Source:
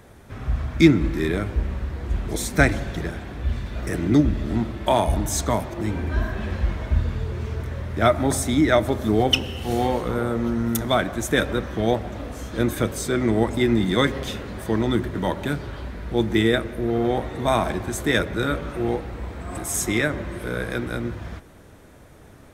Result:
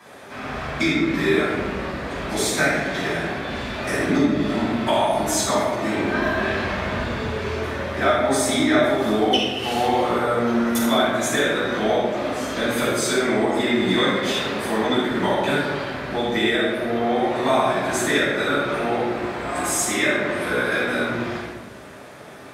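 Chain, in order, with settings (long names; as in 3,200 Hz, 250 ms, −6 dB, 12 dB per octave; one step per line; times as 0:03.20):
meter weighting curve A
downward compressor 4 to 1, threshold −29 dBFS, peak gain reduction 14 dB
convolution reverb RT60 1.1 s, pre-delay 3 ms, DRR −13 dB
level −4 dB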